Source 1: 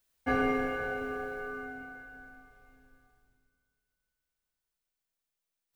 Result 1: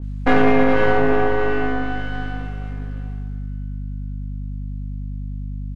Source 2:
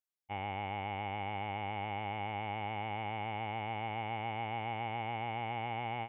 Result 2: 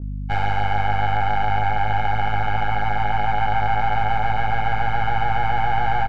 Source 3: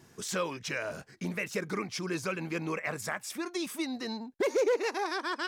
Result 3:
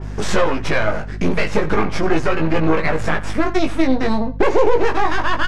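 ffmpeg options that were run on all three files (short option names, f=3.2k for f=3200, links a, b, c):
-filter_complex "[0:a]highpass=68,aeval=exprs='max(val(0),0)':c=same,lowpass=f=11k:w=0.5412,lowpass=f=11k:w=1.3066,aemphasis=mode=reproduction:type=75fm,aeval=exprs='val(0)+0.002*(sin(2*PI*50*n/s)+sin(2*PI*2*50*n/s)/2+sin(2*PI*3*50*n/s)/3+sin(2*PI*4*50*n/s)/4+sin(2*PI*5*50*n/s)/5)':c=same,asplit=2[a][b];[b]acompressor=threshold=-46dB:ratio=6,volume=-1dB[c];[a][c]amix=inputs=2:normalize=0,asplit=2[d][e];[e]adelay=19,volume=-4dB[f];[d][f]amix=inputs=2:normalize=0,aecho=1:1:87:0.126,alimiter=level_in=20.5dB:limit=-1dB:release=50:level=0:latency=1,adynamicequalizer=threshold=0.02:dfrequency=2700:dqfactor=0.7:tfrequency=2700:tqfactor=0.7:attack=5:release=100:ratio=0.375:range=3.5:mode=cutabove:tftype=highshelf,volume=-2dB"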